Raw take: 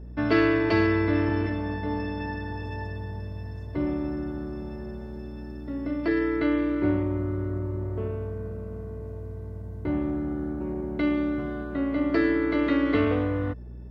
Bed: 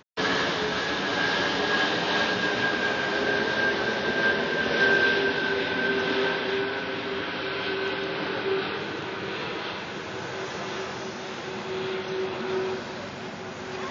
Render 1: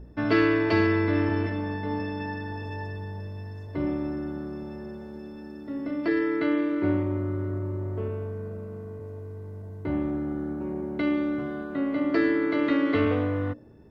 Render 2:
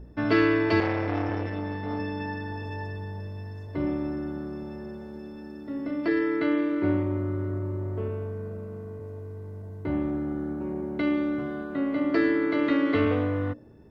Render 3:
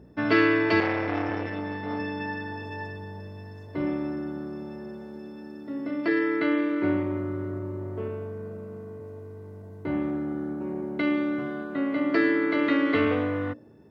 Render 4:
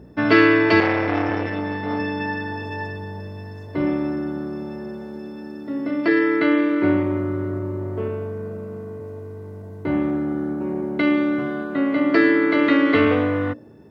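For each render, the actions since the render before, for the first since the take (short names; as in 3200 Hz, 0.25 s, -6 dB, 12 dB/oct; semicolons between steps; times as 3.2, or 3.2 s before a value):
de-hum 60 Hz, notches 11
0.8–1.99 core saturation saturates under 800 Hz
HPF 120 Hz 12 dB/oct; dynamic EQ 2100 Hz, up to +4 dB, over -43 dBFS, Q 0.79
gain +6.5 dB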